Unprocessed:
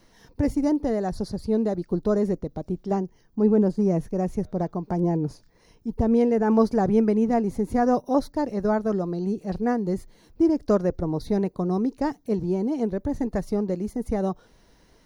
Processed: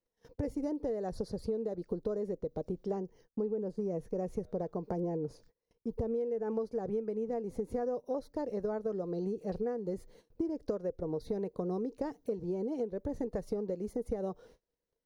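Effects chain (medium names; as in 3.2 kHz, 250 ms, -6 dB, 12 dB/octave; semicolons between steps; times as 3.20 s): gate -51 dBFS, range -30 dB; peaking EQ 480 Hz +13 dB 0.54 oct; compression 10:1, threshold -25 dBFS, peak gain reduction 18.5 dB; trim -6.5 dB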